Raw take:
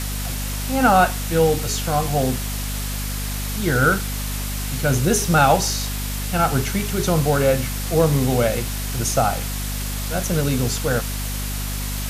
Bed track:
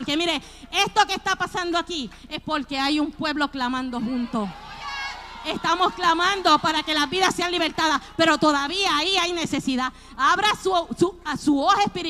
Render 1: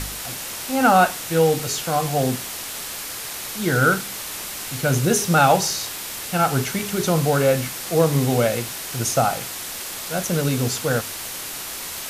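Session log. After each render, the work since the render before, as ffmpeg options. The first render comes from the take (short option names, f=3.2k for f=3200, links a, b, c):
-af "bandreject=f=50:t=h:w=4,bandreject=f=100:t=h:w=4,bandreject=f=150:t=h:w=4,bandreject=f=200:t=h:w=4,bandreject=f=250:t=h:w=4"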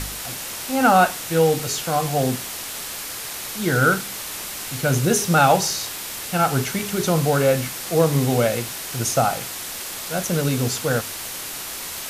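-af anull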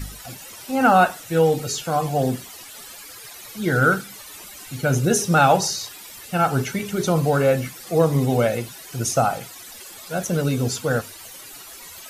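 -af "afftdn=nr=14:nf=-32"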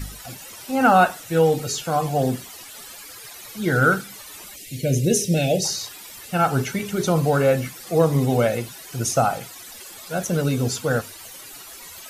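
-filter_complex "[0:a]asettb=1/sr,asplit=3[a][b][c];[a]atrim=end=4.564[d];[b]atrim=start=4.56:end=5.65,asetpts=PTS-STARTPTS,afade=t=in:d=0.004:c=qsin,afade=t=out:st=1.086:d=0.004:c=qsin,asuperstop=centerf=1100:order=8:qfactor=0.85[e];[c]atrim=start=5.646[f];[d][e]acrossfade=d=0.004:c1=hsin:c2=qsin[g];[g][f]acrossfade=d=0.004:c1=qsin:c2=hsin"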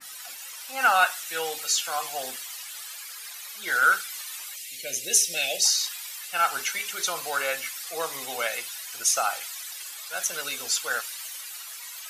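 -af "highpass=1.2k,adynamicequalizer=threshold=0.0112:dfrequency=1600:dqfactor=0.7:tfrequency=1600:tqfactor=0.7:attack=5:release=100:ratio=0.375:range=2:mode=boostabove:tftype=highshelf"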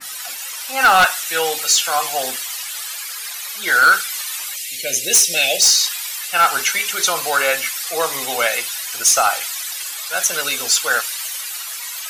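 -af "aeval=exprs='0.473*sin(PI/2*2.24*val(0)/0.473)':c=same"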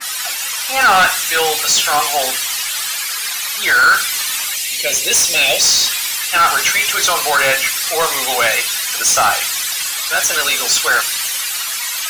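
-filter_complex "[0:a]asplit=2[a][b];[b]highpass=f=720:p=1,volume=16dB,asoftclip=type=tanh:threshold=-6.5dB[c];[a][c]amix=inputs=2:normalize=0,lowpass=f=7.3k:p=1,volume=-6dB"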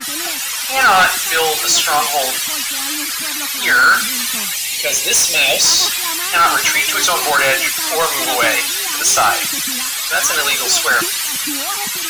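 -filter_complex "[1:a]volume=-8.5dB[a];[0:a][a]amix=inputs=2:normalize=0"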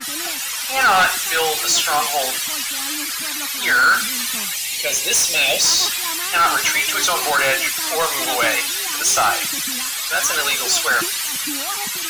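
-af "volume=-3.5dB"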